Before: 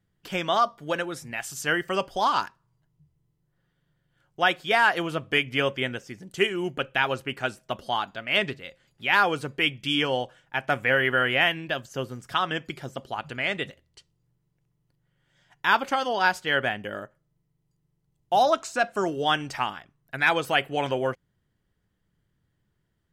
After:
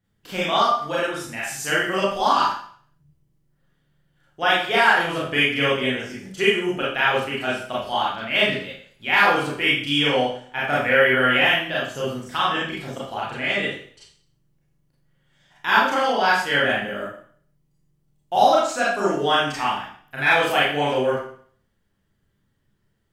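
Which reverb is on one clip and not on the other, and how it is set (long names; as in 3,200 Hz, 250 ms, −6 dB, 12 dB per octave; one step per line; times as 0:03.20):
four-comb reverb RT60 0.53 s, combs from 28 ms, DRR −7.5 dB
level −3 dB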